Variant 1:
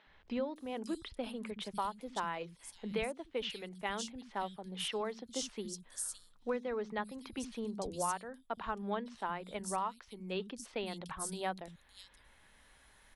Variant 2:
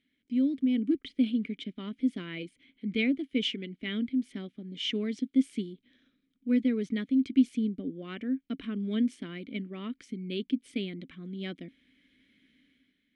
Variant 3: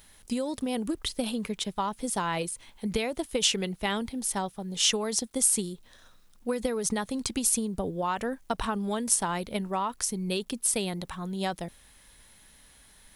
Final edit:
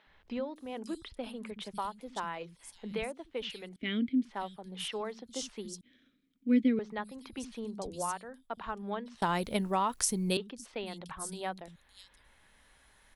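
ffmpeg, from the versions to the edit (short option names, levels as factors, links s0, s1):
-filter_complex "[1:a]asplit=2[s0][s1];[0:a]asplit=4[s2][s3][s4][s5];[s2]atrim=end=3.762[s6];[s0]atrim=start=3.758:end=4.252[s7];[s3]atrim=start=4.248:end=5.812[s8];[s1]atrim=start=5.808:end=6.792[s9];[s4]atrim=start=6.788:end=9.222[s10];[2:a]atrim=start=9.218:end=10.372[s11];[s5]atrim=start=10.368[s12];[s6][s7]acrossfade=d=0.004:c1=hsin:c2=hsin[s13];[s13][s8]acrossfade=d=0.004:c1=hsin:c2=hsin[s14];[s14][s9]acrossfade=d=0.004:c1=hsin:c2=hsin[s15];[s15][s10]acrossfade=d=0.004:c1=hsin:c2=hsin[s16];[s16][s11]acrossfade=d=0.004:c1=hsin:c2=hsin[s17];[s17][s12]acrossfade=d=0.004:c1=hsin:c2=hsin"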